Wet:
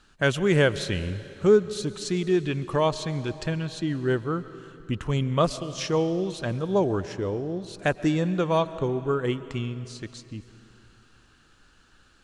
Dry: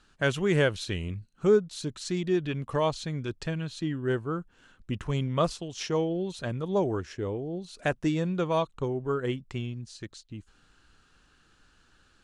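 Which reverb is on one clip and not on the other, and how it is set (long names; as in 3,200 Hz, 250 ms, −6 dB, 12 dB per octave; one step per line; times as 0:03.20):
comb and all-pass reverb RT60 3 s, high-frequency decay 0.95×, pre-delay 85 ms, DRR 14.5 dB
level +3.5 dB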